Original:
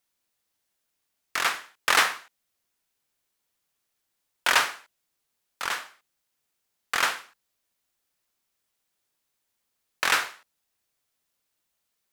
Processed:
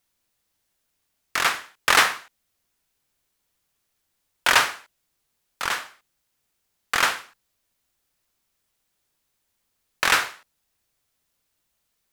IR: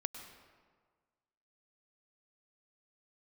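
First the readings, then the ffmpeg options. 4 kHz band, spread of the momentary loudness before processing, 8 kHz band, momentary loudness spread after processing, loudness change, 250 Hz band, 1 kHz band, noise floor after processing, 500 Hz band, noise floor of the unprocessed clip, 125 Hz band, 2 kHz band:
+3.5 dB, 13 LU, +3.5 dB, 13 LU, +3.5 dB, +5.5 dB, +3.5 dB, -76 dBFS, +4.0 dB, -79 dBFS, n/a, +3.5 dB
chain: -af "lowshelf=f=140:g=9,volume=3.5dB"

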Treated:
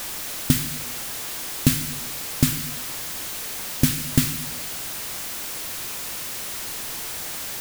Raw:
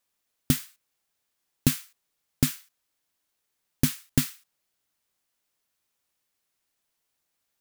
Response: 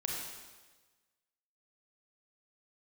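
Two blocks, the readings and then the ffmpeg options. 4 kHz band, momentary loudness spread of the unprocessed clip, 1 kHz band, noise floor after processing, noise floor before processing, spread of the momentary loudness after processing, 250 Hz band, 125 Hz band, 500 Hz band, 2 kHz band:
+9.5 dB, 8 LU, +13.0 dB, -32 dBFS, -79 dBFS, 7 LU, +5.0 dB, +5.5 dB, +6.5 dB, +10.0 dB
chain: -filter_complex "[0:a]aeval=exprs='val(0)+0.5*0.0398*sgn(val(0))':c=same,asplit=2[a][b];[1:a]atrim=start_sample=2205,lowshelf=f=340:g=7.5[c];[b][c]afir=irnorm=-1:irlink=0,volume=-13.5dB[d];[a][d]amix=inputs=2:normalize=0,volume=1dB"

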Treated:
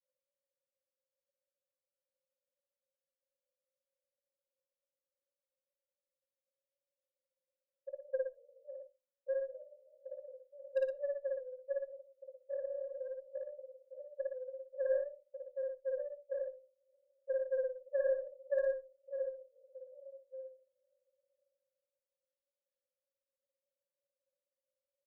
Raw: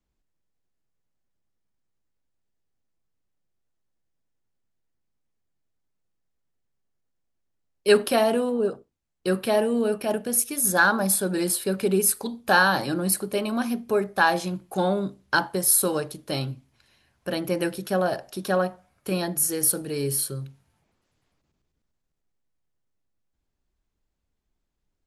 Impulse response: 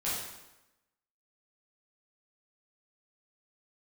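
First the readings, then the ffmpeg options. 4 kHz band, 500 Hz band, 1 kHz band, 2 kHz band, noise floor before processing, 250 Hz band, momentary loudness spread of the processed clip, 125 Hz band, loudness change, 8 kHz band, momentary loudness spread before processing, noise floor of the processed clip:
under -40 dB, -11.5 dB, under -40 dB, -29.0 dB, -79 dBFS, under -40 dB, 19 LU, under -40 dB, -16.0 dB, under -40 dB, 11 LU, under -85 dBFS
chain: -filter_complex "[0:a]acompressor=threshold=-37dB:ratio=4,asuperpass=centerf=560:order=12:qfactor=7.6,aeval=exprs='0.0211*(cos(1*acos(clip(val(0)/0.0211,-1,1)))-cos(1*PI/2))+0.000266*(cos(2*acos(clip(val(0)/0.0211,-1,1)))-cos(2*PI/2))+0.00211*(cos(3*acos(clip(val(0)/0.0211,-1,1)))-cos(3*PI/2))':c=same,aecho=1:1:55.39|116.6:1|0.501,asplit=2[a][b];[1:a]atrim=start_sample=2205,atrim=end_sample=3969[c];[b][c]afir=irnorm=-1:irlink=0,volume=-24.5dB[d];[a][d]amix=inputs=2:normalize=0,afreqshift=-15,volume=8dB"

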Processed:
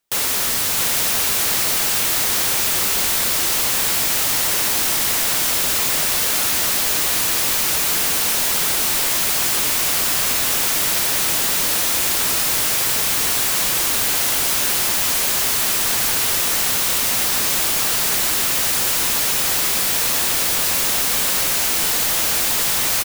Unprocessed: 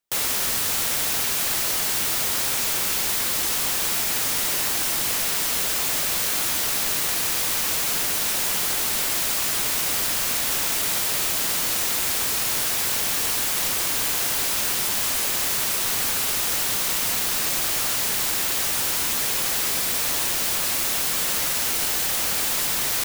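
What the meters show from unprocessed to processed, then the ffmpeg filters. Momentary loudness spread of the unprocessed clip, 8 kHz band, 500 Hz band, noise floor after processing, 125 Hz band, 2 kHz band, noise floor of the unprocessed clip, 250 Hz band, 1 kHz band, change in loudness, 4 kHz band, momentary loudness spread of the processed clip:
0 LU, +5.0 dB, +5.0 dB, -19 dBFS, +5.0 dB, +5.0 dB, -24 dBFS, +5.0 dB, +5.0 dB, +5.0 dB, +5.0 dB, 0 LU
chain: -filter_complex "[0:a]volume=25dB,asoftclip=hard,volume=-25dB,asplit=2[a][b];[b]aecho=0:1:658:0.531[c];[a][c]amix=inputs=2:normalize=0,volume=7.5dB"

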